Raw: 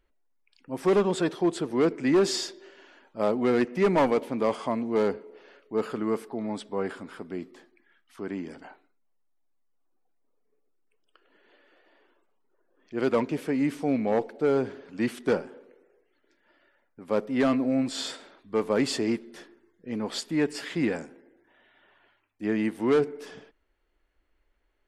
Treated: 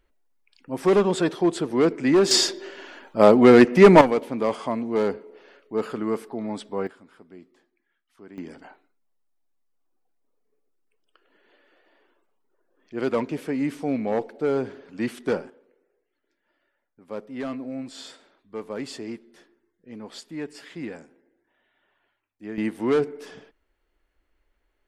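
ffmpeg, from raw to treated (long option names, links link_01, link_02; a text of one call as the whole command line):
ffmpeg -i in.wav -af "asetnsamples=nb_out_samples=441:pad=0,asendcmd='2.31 volume volume 11.5dB;4.01 volume volume 1.5dB;6.87 volume volume -11dB;8.38 volume volume 0dB;15.5 volume volume -8dB;22.58 volume volume 1dB',volume=3.5dB" out.wav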